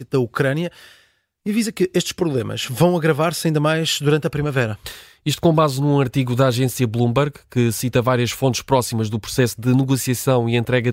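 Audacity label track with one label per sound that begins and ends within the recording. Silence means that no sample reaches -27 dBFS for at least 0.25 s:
1.460000	4.940000	sound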